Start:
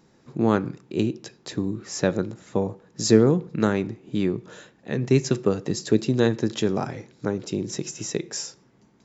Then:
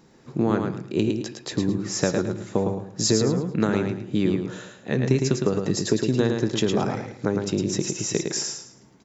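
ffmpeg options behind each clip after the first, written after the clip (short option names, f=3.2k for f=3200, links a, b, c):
-filter_complex "[0:a]acompressor=threshold=-21dB:ratio=6,asplit=2[a][b];[b]aecho=0:1:109|218|327|436:0.562|0.157|0.0441|0.0123[c];[a][c]amix=inputs=2:normalize=0,volume=3.5dB"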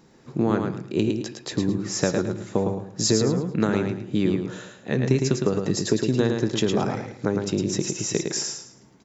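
-af anull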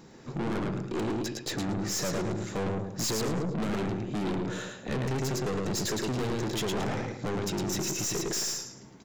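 -af "aeval=exprs='(tanh(44.7*val(0)+0.35)-tanh(0.35))/44.7':c=same,volume=4.5dB"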